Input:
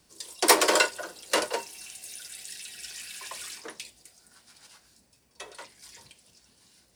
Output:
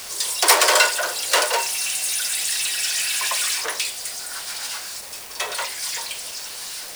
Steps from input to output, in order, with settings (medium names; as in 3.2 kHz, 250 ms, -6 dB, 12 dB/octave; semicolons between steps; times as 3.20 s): power-law waveshaper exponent 0.5; Bessel high-pass 700 Hz, order 6; word length cut 6-bit, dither none